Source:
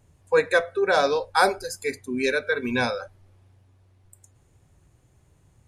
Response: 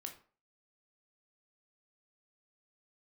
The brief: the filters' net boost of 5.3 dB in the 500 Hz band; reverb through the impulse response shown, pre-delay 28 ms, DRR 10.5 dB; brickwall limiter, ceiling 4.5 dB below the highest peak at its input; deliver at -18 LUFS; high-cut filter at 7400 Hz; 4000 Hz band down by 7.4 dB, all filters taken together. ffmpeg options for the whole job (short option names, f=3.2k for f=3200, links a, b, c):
-filter_complex "[0:a]lowpass=7.4k,equalizer=f=500:t=o:g=6,equalizer=f=4k:t=o:g=-8.5,alimiter=limit=-9.5dB:level=0:latency=1,asplit=2[a][b];[1:a]atrim=start_sample=2205,adelay=28[c];[b][c]afir=irnorm=-1:irlink=0,volume=-6.5dB[d];[a][d]amix=inputs=2:normalize=0,volume=3.5dB"